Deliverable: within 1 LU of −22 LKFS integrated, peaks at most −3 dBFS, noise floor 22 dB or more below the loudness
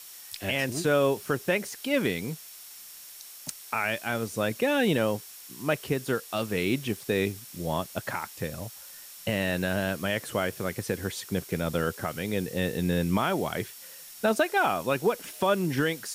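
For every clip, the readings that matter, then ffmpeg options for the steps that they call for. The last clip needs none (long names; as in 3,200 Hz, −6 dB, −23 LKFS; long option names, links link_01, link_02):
interfering tone 5,500 Hz; level of the tone −56 dBFS; background noise floor −46 dBFS; target noise floor −51 dBFS; integrated loudness −28.5 LKFS; sample peak −14.0 dBFS; target loudness −22.0 LKFS
→ -af "bandreject=frequency=5500:width=30"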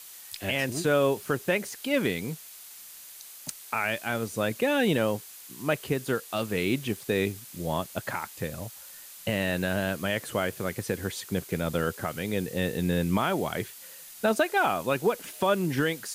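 interfering tone none found; background noise floor −47 dBFS; target noise floor −51 dBFS
→ -af "afftdn=noise_reduction=6:noise_floor=-47"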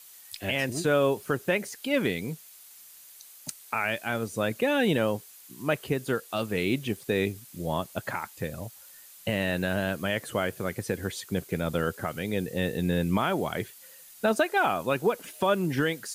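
background noise floor −51 dBFS; integrated loudness −29.0 LKFS; sample peak −14.0 dBFS; target loudness −22.0 LKFS
→ -af "volume=7dB"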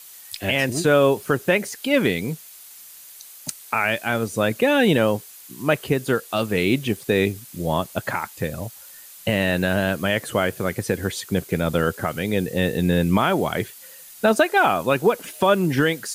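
integrated loudness −22.0 LKFS; sample peak −7.0 dBFS; background noise floor −44 dBFS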